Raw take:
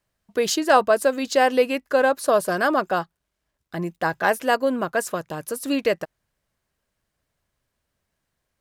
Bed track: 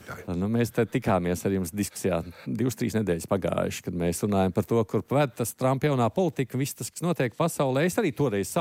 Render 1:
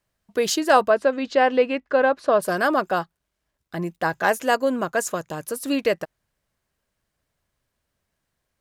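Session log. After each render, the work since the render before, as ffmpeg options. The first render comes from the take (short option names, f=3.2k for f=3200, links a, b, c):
-filter_complex "[0:a]asplit=3[a][b][c];[a]afade=t=out:st=0.89:d=0.02[d];[b]lowpass=3.2k,afade=t=in:st=0.89:d=0.02,afade=t=out:st=2.41:d=0.02[e];[c]afade=t=in:st=2.41:d=0.02[f];[d][e][f]amix=inputs=3:normalize=0,asettb=1/sr,asplit=3[g][h][i];[g]atrim=end=4.134[j];[h]atrim=start=4.13:end=5.44,asetpts=PTS-STARTPTS,afade=t=in:d=0.004:c=qsin,afade=t=out:st=1.306:d=0.004:c=qsin,equalizer=f=6.8k:w=4.9:g=9[k];[i]atrim=start=5.436[l];[j][k]acrossfade=d=0.004:c1=hsin:c2=qsin[m];[m][l]acrossfade=d=0.004:c1=qsin:c2=hsin"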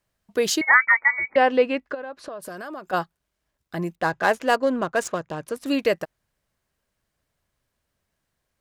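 -filter_complex "[0:a]asettb=1/sr,asplit=3[a][b][c];[a]atrim=end=0.614[d];[b]atrim=start=0.61:end=1.36,asetpts=PTS-STARTPTS,afade=t=in:d=0.004:c=qsin,afade=t=out:st=0.746:d=0.004:c=qsin,lowpass=f=2.1k:t=q:w=0.5098,lowpass=f=2.1k:t=q:w=0.6013,lowpass=f=2.1k:t=q:w=0.9,lowpass=f=2.1k:t=q:w=2.563,afreqshift=-2500[e];[c]atrim=start=1.356[f];[d][e]acrossfade=d=0.004:c1=hsin:c2=qsin[g];[g][f]acrossfade=d=0.004:c1=qsin:c2=hsin,asplit=3[h][i][j];[h]afade=t=out:st=1.93:d=0.02[k];[i]acompressor=threshold=-33dB:ratio=6:attack=3.2:release=140:knee=1:detection=peak,afade=t=in:st=1.93:d=0.02,afade=t=out:st=2.92:d=0.02[l];[j]afade=t=in:st=2.92:d=0.02[m];[k][l][m]amix=inputs=3:normalize=0,asettb=1/sr,asplit=3[n][o][p];[n]atrim=end=3.954[q];[o]atrim=start=3.95:end=5.66,asetpts=PTS-STARTPTS,afade=t=in:d=0.004:c=qsin,afade=t=out:st=1.706:d=0.004:c=qsin,adynamicsmooth=sensitivity=5.5:basefreq=2.7k[r];[p]atrim=start=5.656[s];[q][r]acrossfade=d=0.004:c1=hsin:c2=qsin[t];[t][s]acrossfade=d=0.004:c1=qsin:c2=hsin"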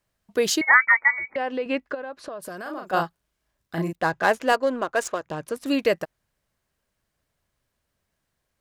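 -filter_complex "[0:a]asettb=1/sr,asplit=3[a][b][c];[a]atrim=end=1.184[d];[b]atrim=start=1.18:end=1.66,asetpts=PTS-STARTPTS,afade=t=in:d=0.004:c=qsin,afade=t=out:st=0.476:d=0.004:c=qsin,acompressor=threshold=-31dB:ratio=2:attack=3.2:release=140:knee=1:detection=peak[e];[c]atrim=start=1.656[f];[d][e]acrossfade=d=0.004:c1=hsin:c2=qsin[g];[g][f]acrossfade=d=0.004:c1=qsin:c2=hsin,asettb=1/sr,asplit=3[h][i][j];[h]atrim=end=2.624[k];[i]atrim=start=2.62:end=3.93,asetpts=PTS-STARTPTS,afade=t=in:d=0.004:c=qsin,afade=t=out:st=1.306:d=0.004:c=qsin,asplit=2[l][m];[m]adelay=36,volume=-3.5dB[n];[l][n]amix=inputs=2:normalize=0,atrim=end_sample=57771[o];[j]atrim=start=3.926[p];[k][o]acrossfade=d=0.004:c1=hsin:c2=qsin[q];[q][p]acrossfade=d=0.004:c1=qsin:c2=hsin,asettb=1/sr,asplit=3[r][s][t];[r]atrim=end=4.524[u];[s]atrim=start=4.52:end=5.25,asetpts=PTS-STARTPTS,afade=t=in:d=0.004:c=qsin,afade=t=out:st=0.726:d=0.004:c=qsin,equalizer=f=160:w=1.5:g=-13.5[v];[t]atrim=start=5.246[w];[u][v]acrossfade=d=0.004:c1=hsin:c2=qsin[x];[x][w]acrossfade=d=0.004:c1=qsin:c2=hsin"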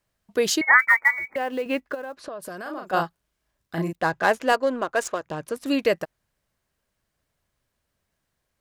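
-filter_complex "[0:a]asplit=3[a][b][c];[a]afade=t=out:st=0.78:d=0.02[d];[b]acrusher=bits=7:mode=log:mix=0:aa=0.000001,afade=t=in:st=0.78:d=0.02,afade=t=out:st=2.16:d=0.02[e];[c]afade=t=in:st=2.16:d=0.02[f];[d][e][f]amix=inputs=3:normalize=0"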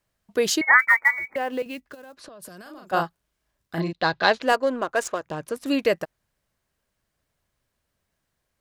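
-filter_complex "[0:a]asettb=1/sr,asplit=3[a][b][c];[a]atrim=end=1.624[d];[b]atrim=start=1.62:end=2.92,asetpts=PTS-STARTPTS,afade=t=in:d=0.004:c=qsin,afade=t=out:st=1.296:d=0.004:c=qsin,acrossover=split=210|3000[e][f][g];[f]acompressor=threshold=-47dB:ratio=2.5:attack=3.2:release=140:knee=2.83:detection=peak[h];[e][h][g]amix=inputs=3:normalize=0[i];[c]atrim=start=2.916[j];[d][i]acrossfade=d=0.004:c1=hsin:c2=qsin[k];[k][j]acrossfade=d=0.004:c1=qsin:c2=hsin,asettb=1/sr,asplit=3[l][m][n];[l]atrim=end=3.804[o];[m]atrim=start=3.8:end=4.42,asetpts=PTS-STARTPTS,afade=t=in:d=0.004:c=qsin,afade=t=out:st=0.616:d=0.004:c=qsin,lowpass=f=4.1k:t=q:w=5.5[p];[n]atrim=start=4.416[q];[o][p]acrossfade=d=0.004:c1=hsin:c2=qsin[r];[r][q]acrossfade=d=0.004:c1=qsin:c2=hsin"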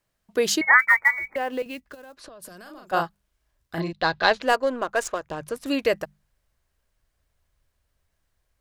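-af "bandreject=f=50:t=h:w=6,bandreject=f=100:t=h:w=6,bandreject=f=150:t=h:w=6,bandreject=f=200:t=h:w=6,asubboost=boost=4.5:cutoff=81"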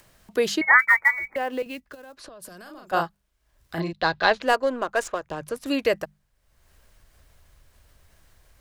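-filter_complex "[0:a]acrossover=split=420|1300|4000[a][b][c][d];[d]alimiter=level_in=1.5dB:limit=-24dB:level=0:latency=1:release=190,volume=-1.5dB[e];[a][b][c][e]amix=inputs=4:normalize=0,acompressor=mode=upward:threshold=-41dB:ratio=2.5"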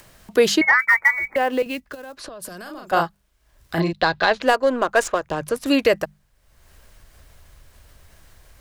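-af "alimiter=limit=-12.5dB:level=0:latency=1:release=226,acontrast=87"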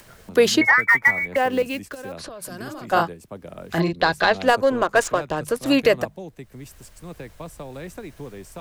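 -filter_complex "[1:a]volume=-12dB[a];[0:a][a]amix=inputs=2:normalize=0"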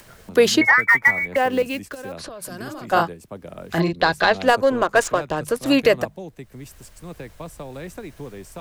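-af "volume=1dB"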